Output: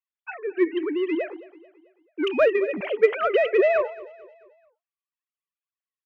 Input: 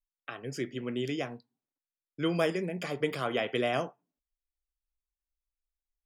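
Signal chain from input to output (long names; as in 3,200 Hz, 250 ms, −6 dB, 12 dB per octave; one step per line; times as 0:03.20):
three sine waves on the formant tracks
in parallel at −6 dB: soft clipping −32 dBFS, distortion −8 dB
0:00.83–0:02.39: on the sum: downward compressor, threshold −30 dBFS, peak gain reduction 6.5 dB
repeating echo 219 ms, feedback 45%, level −18 dB
dynamic equaliser 1,700 Hz, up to +4 dB, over −42 dBFS, Q 0.71
level +7.5 dB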